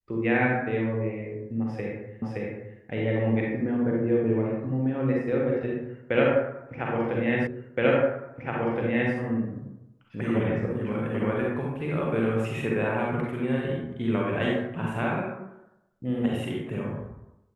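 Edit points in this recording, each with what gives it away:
0:02.22: the same again, the last 0.57 s
0:07.47: the same again, the last 1.67 s

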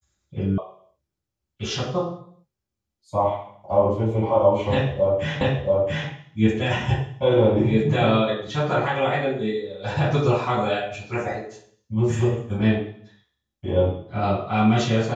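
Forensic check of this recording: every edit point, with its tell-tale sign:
0:00.58: cut off before it has died away
0:05.41: the same again, the last 0.68 s

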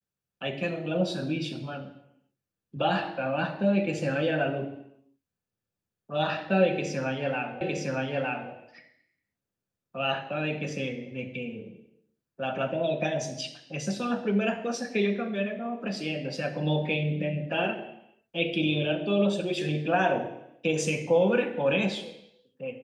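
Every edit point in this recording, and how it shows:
0:07.61: the same again, the last 0.91 s

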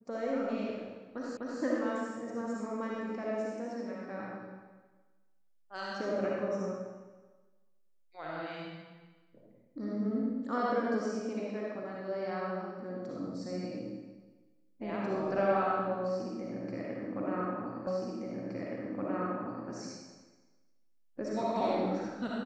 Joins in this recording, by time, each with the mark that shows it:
0:01.37: the same again, the last 0.25 s
0:17.87: the same again, the last 1.82 s

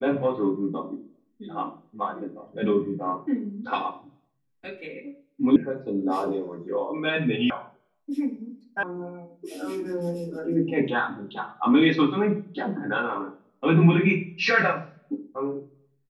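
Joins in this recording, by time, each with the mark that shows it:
0:05.56: cut off before it has died away
0:07.50: cut off before it has died away
0:08.83: cut off before it has died away

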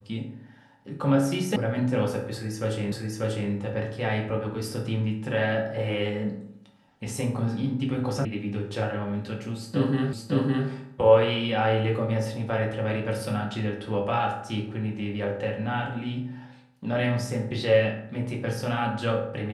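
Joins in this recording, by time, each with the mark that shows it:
0:01.56: cut off before it has died away
0:02.92: the same again, the last 0.59 s
0:08.25: cut off before it has died away
0:10.13: the same again, the last 0.56 s

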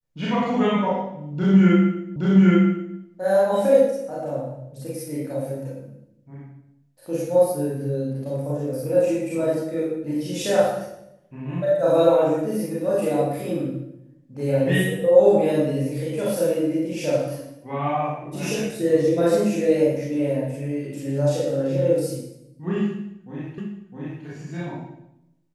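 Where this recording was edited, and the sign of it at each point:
0:02.16: the same again, the last 0.82 s
0:23.58: the same again, the last 0.66 s

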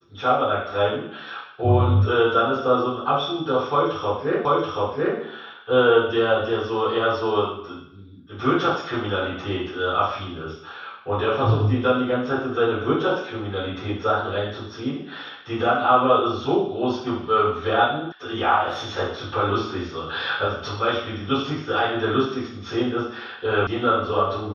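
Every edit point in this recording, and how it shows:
0:04.45: the same again, the last 0.73 s
0:18.12: cut off before it has died away
0:23.67: cut off before it has died away

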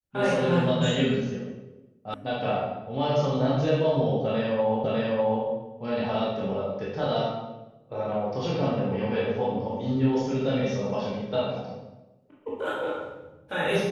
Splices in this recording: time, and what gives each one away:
0:02.14: cut off before it has died away
0:04.84: the same again, the last 0.6 s

